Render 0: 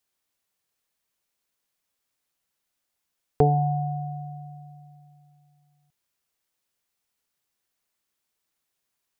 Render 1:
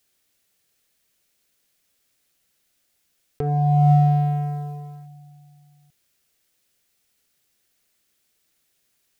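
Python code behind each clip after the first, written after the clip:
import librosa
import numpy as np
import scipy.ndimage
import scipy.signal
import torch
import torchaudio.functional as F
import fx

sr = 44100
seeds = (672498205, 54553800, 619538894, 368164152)

y = fx.peak_eq(x, sr, hz=980.0, db=-8.5, octaves=0.81)
y = fx.leveller(y, sr, passes=1)
y = fx.over_compress(y, sr, threshold_db=-26.0, ratio=-1.0)
y = F.gain(torch.from_numpy(y), 9.0).numpy()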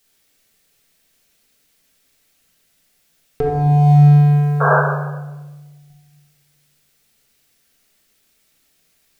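y = fx.spec_paint(x, sr, seeds[0], shape='noise', start_s=4.6, length_s=0.21, low_hz=390.0, high_hz=1700.0, level_db=-22.0)
y = fx.room_shoebox(y, sr, seeds[1], volume_m3=570.0, walls='mixed', distance_m=1.6)
y = F.gain(torch.from_numpy(y), 5.0).numpy()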